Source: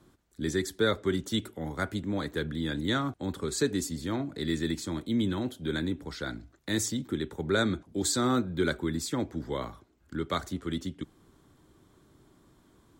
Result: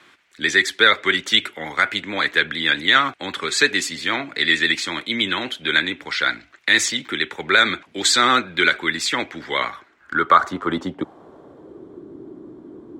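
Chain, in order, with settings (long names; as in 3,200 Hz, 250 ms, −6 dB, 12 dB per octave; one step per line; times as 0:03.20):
pitch vibrato 11 Hz 40 cents
band-pass filter sweep 2,300 Hz → 350 Hz, 0:09.55–0:12.03
boost into a limiter +27.5 dB
level −1 dB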